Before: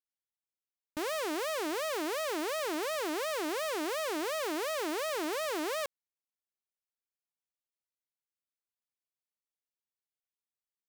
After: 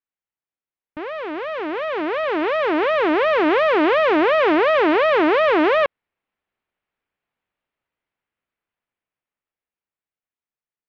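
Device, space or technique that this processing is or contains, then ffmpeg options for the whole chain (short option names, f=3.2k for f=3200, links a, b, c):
action camera in a waterproof case: -af "lowpass=f=2.7k:w=0.5412,lowpass=f=2.7k:w=1.3066,dynaudnorm=f=290:g=17:m=14.5dB,volume=4dB" -ar 24000 -c:a aac -b:a 48k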